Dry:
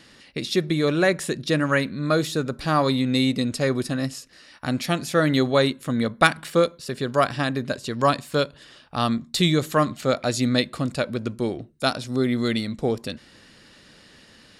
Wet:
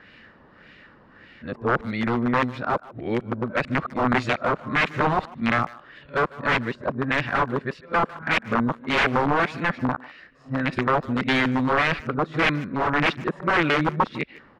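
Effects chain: reverse the whole clip; integer overflow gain 15.5 dB; LFO low-pass sine 1.7 Hz 990–2400 Hz; speakerphone echo 150 ms, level -19 dB

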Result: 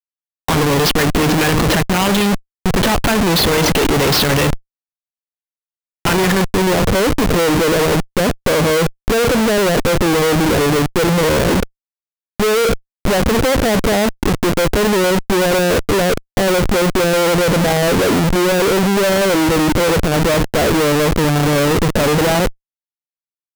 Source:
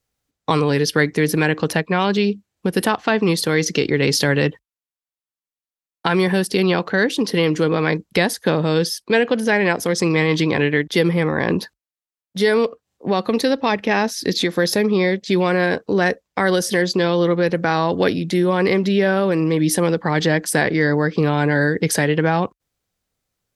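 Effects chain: transient shaper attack -6 dB, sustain +7 dB; low-pass sweep 3.4 kHz -> 630 Hz, 6.13–6.82 s; Schmitt trigger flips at -25 dBFS; trim +3.5 dB

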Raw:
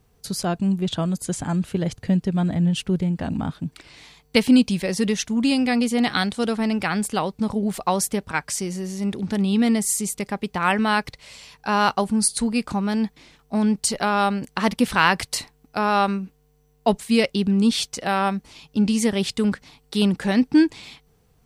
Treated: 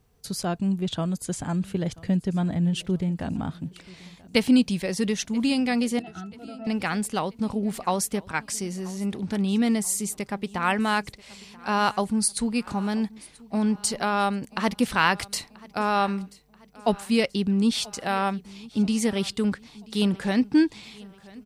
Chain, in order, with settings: 5.99–6.67 s: pitch-class resonator E, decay 0.13 s; on a send: feedback delay 984 ms, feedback 45%, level -22 dB; on the sum: trim -3.5 dB

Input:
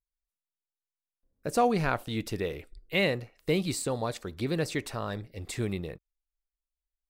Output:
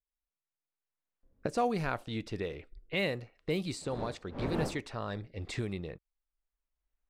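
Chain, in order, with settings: 3.80–4.80 s: wind noise 470 Hz -34 dBFS; recorder AGC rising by 10 dB/s; level-controlled noise filter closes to 2 kHz, open at -22 dBFS; trim -5.5 dB

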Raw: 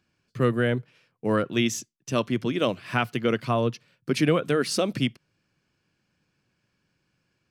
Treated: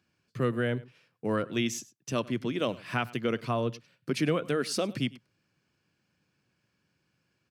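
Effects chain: high-pass 62 Hz; delay 101 ms -21.5 dB; in parallel at -2 dB: compression, threshold -32 dBFS, peak gain reduction 15 dB; on the sum: trim -7 dB

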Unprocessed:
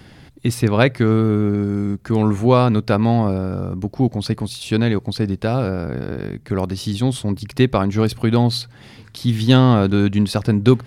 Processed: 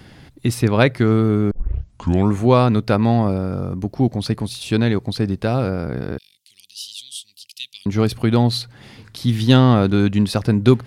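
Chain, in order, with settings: 1.51 s: tape start 0.78 s; 6.18–7.86 s: elliptic high-pass 2.9 kHz, stop band 50 dB

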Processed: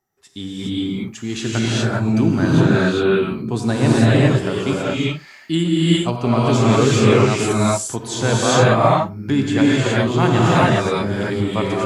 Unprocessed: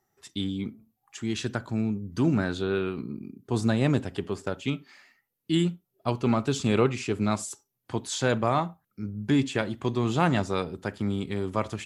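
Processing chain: level rider gain up to 7.5 dB; gated-style reverb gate 440 ms rising, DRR -7.5 dB; trim -3 dB

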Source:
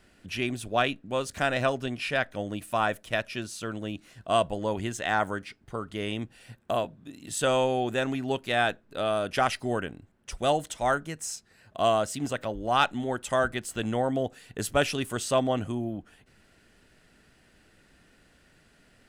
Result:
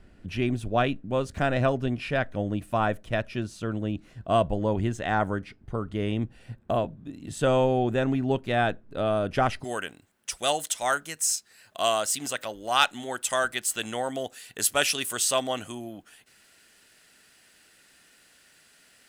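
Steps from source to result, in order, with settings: tilt EQ -2.5 dB/octave, from 9.63 s +3.5 dB/octave

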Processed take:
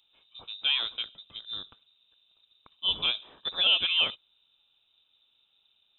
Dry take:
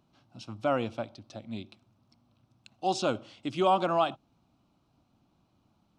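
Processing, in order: dynamic bell 2 kHz, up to +5 dB, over -48 dBFS, Q 2.1; frequency inversion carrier 3.8 kHz

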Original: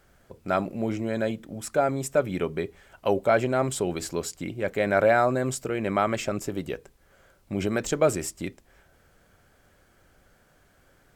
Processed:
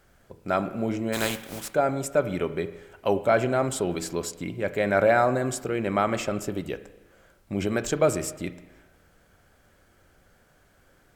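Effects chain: 1.12–1.72 s: spectral contrast reduction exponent 0.43; spring tank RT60 1.1 s, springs 34/40 ms, chirp 35 ms, DRR 12 dB

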